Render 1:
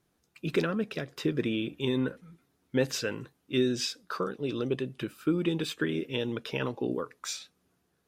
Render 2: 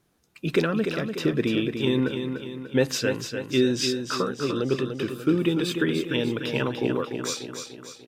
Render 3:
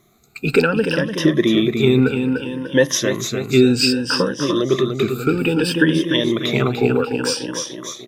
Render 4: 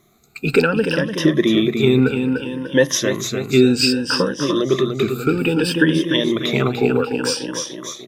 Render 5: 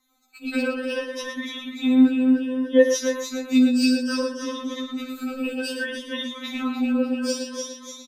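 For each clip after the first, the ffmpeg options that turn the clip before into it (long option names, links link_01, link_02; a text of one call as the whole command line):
ffmpeg -i in.wav -af "aecho=1:1:295|590|885|1180|1475|1770:0.447|0.223|0.112|0.0558|0.0279|0.014,volume=5dB" out.wav
ffmpeg -i in.wav -filter_complex "[0:a]afftfilt=real='re*pow(10,15/40*sin(2*PI*(1.2*log(max(b,1)*sr/1024/100)/log(2)-(0.62)*(pts-256)/sr)))':imag='im*pow(10,15/40*sin(2*PI*(1.2*log(max(b,1)*sr/1024/100)/log(2)-(0.62)*(pts-256)/sr)))':win_size=1024:overlap=0.75,asplit=2[link_01][link_02];[link_02]acompressor=threshold=-30dB:ratio=6,volume=-1dB[link_03];[link_01][link_03]amix=inputs=2:normalize=0,volume=3.5dB" out.wav
ffmpeg -i in.wav -af "bandreject=frequency=60:width_type=h:width=6,bandreject=frequency=120:width_type=h:width=6" out.wav
ffmpeg -i in.wav -filter_complex "[0:a]asplit=2[link_01][link_02];[link_02]aecho=0:1:53|113:0.237|0.355[link_03];[link_01][link_03]amix=inputs=2:normalize=0,afftfilt=real='re*3.46*eq(mod(b,12),0)':imag='im*3.46*eq(mod(b,12),0)':win_size=2048:overlap=0.75,volume=-6.5dB" out.wav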